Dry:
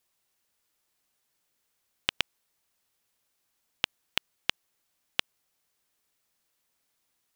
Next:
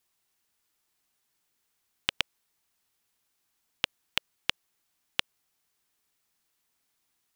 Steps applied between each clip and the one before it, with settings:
parametric band 550 Hz −9.5 dB 0.2 octaves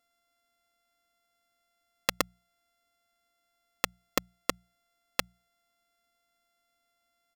samples sorted by size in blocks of 64 samples
mains-hum notches 60/120/180 Hz
comb filter 3.8 ms, depth 46%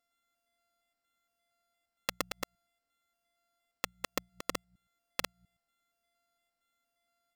delay that plays each chunk backwards 116 ms, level −3 dB
level −6.5 dB

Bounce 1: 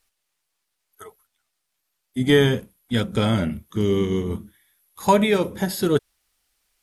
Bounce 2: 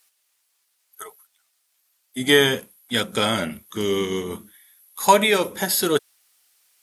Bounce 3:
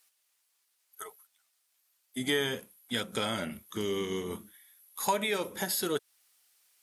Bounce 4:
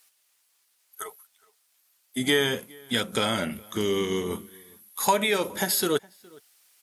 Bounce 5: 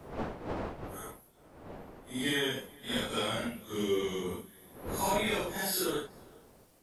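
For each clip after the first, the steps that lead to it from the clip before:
high-pass filter 730 Hz 6 dB per octave; high-shelf EQ 6,300 Hz +6.5 dB; level +5.5 dB
downward compressor 2 to 1, threshold −26 dBFS, peak gain reduction 9.5 dB; level −5.5 dB
slap from a distant wall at 71 metres, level −25 dB; level +6.5 dB
random phases in long frames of 200 ms; wind on the microphone 600 Hz −37 dBFS; level −7 dB

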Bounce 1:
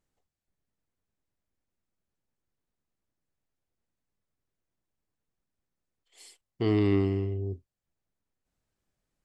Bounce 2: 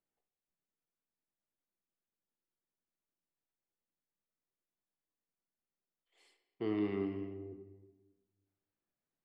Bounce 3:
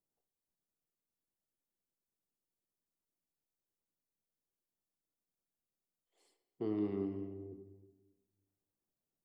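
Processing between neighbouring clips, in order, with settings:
three-way crossover with the lows and the highs turned down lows −13 dB, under 170 Hz, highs −16 dB, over 3,200 Hz; on a send at −7 dB: convolution reverb RT60 1.3 s, pre-delay 5 ms; on the sum: level −9 dB
harmonic and percussive parts rebalanced harmonic −4 dB; parametric band 2,300 Hz −14 dB 1.9 octaves; level +3 dB

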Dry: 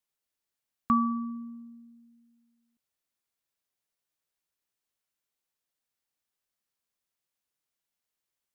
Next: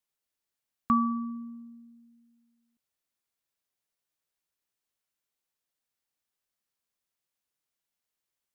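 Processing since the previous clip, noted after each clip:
no processing that can be heard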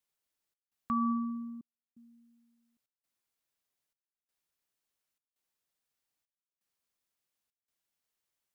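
brickwall limiter −23.5 dBFS, peak gain reduction 9 dB
gate pattern "xxx.xxxxx..xx" 84 BPM −60 dB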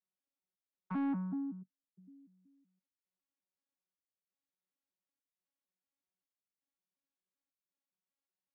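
vocoder with an arpeggio as carrier bare fifth, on F#3, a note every 188 ms
soft clipping −30.5 dBFS, distortion −13 dB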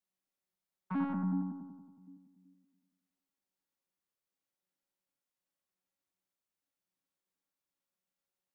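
bucket-brigade delay 92 ms, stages 1,024, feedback 63%, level −3.5 dB
on a send at −18 dB: convolution reverb, pre-delay 6 ms
on the sum: level +1.5 dB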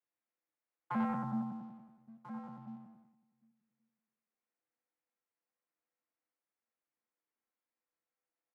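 slap from a distant wall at 230 metres, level −12 dB
single-sideband voice off tune −53 Hz 300–2,500 Hz
leveller curve on the samples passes 1
level +2 dB

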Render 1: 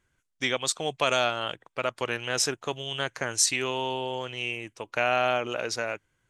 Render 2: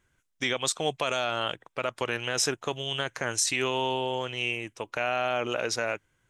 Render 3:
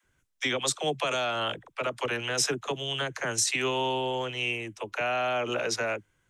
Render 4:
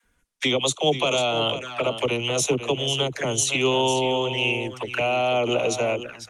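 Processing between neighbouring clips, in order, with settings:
notch filter 4,500 Hz, Q 16; brickwall limiter −17 dBFS, peak gain reduction 9 dB; level +2 dB
all-pass dispersion lows, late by 49 ms, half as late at 370 Hz
single-tap delay 497 ms −10.5 dB; flanger swept by the level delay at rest 4.3 ms, full sweep at −28.5 dBFS; level +9 dB; Opus 32 kbit/s 48,000 Hz

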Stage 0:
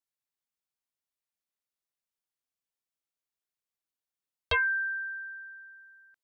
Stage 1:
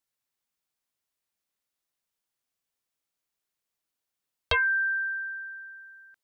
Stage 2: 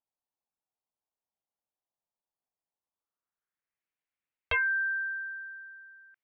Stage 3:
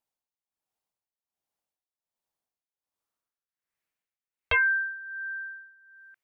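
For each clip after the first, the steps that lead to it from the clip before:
downward compressor 2.5 to 1, threshold −30 dBFS, peak gain reduction 4.5 dB; level +6 dB
low-pass filter sweep 830 Hz → 2,300 Hz, 0:02.75–0:03.87; level −7.5 dB
amplitude tremolo 1.3 Hz, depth 80%; level +5 dB

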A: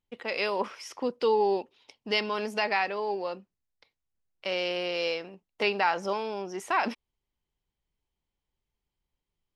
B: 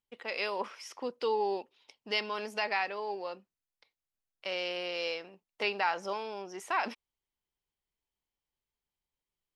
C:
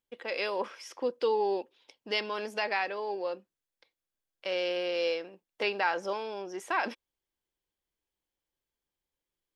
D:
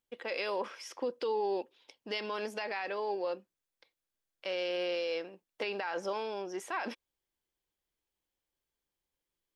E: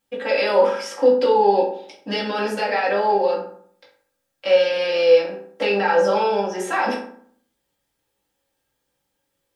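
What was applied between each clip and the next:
low-shelf EQ 320 Hz −8.5 dB; level −3.5 dB
hollow resonant body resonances 330/510/1,600/3,400 Hz, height 7 dB, ringing for 30 ms
brickwall limiter −25.5 dBFS, peak gain reduction 10.5 dB
convolution reverb RT60 0.60 s, pre-delay 3 ms, DRR −7.5 dB; level +7 dB

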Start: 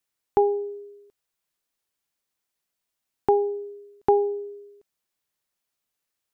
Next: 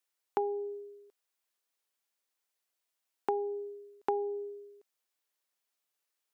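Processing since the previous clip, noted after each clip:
high-pass filter 360 Hz
downward compressor 2.5 to 1, threshold −29 dBFS, peak gain reduction 9 dB
level −2.5 dB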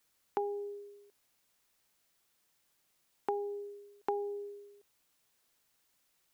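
bit-depth reduction 12 bits, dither triangular
level −3 dB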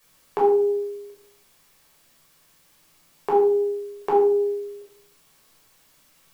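in parallel at −2.5 dB: brickwall limiter −31.5 dBFS, peak gain reduction 11.5 dB
on the sum: rectangular room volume 880 cubic metres, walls furnished, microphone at 5.6 metres
level +5 dB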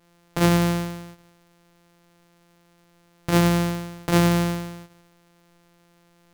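samples sorted by size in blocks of 256 samples

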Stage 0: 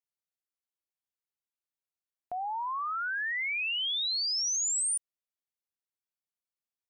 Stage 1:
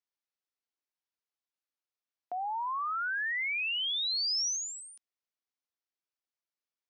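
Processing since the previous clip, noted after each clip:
elliptic band-pass filter 250–5,800 Hz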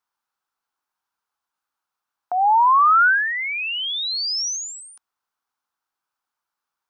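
flat-topped bell 1,100 Hz +12.5 dB 1.2 octaves
level +6.5 dB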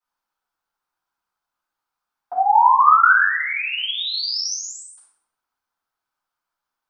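convolution reverb RT60 0.85 s, pre-delay 3 ms, DRR −13 dB
level −14.5 dB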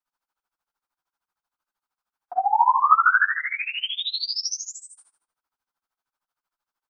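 amplitude tremolo 13 Hz, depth 91%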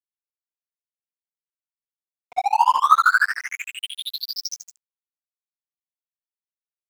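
dead-zone distortion −29.5 dBFS
level +2.5 dB

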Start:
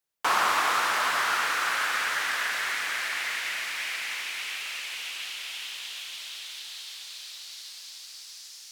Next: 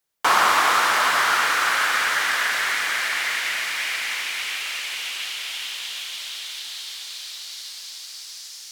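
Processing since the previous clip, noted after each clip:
notch filter 2,600 Hz, Q 30
level +6.5 dB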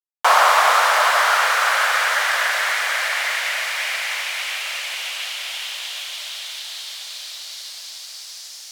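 bit reduction 11 bits
low shelf with overshoot 410 Hz −12.5 dB, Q 3
level +1.5 dB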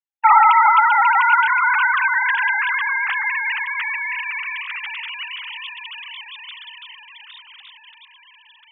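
three sine waves on the formant tracks
level +1.5 dB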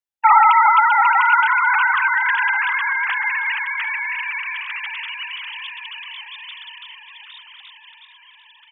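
repeating echo 744 ms, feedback 42%, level −14 dB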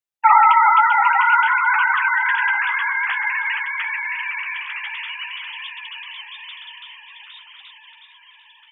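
flanger 0.52 Hz, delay 9.7 ms, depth 5.1 ms, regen −32%
level +3 dB

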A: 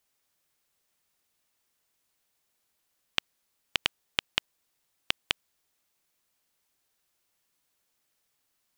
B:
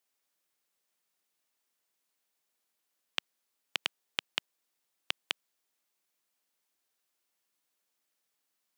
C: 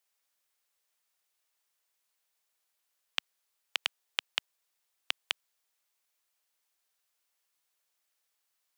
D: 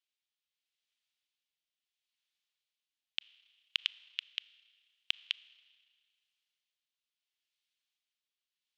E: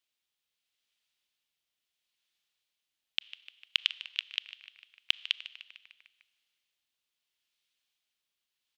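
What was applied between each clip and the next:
high-pass filter 200 Hz 12 dB per octave; level −5 dB
parametric band 230 Hz −14.5 dB 1.3 octaves; level +1.5 dB
rotating-speaker cabinet horn 0.75 Hz; resonant band-pass 3,200 Hz, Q 2.2; four-comb reverb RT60 1.9 s, combs from 27 ms, DRR 20 dB; level +2 dB
echo with shifted repeats 150 ms, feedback 60%, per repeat −100 Hz, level −15 dB; level +5 dB

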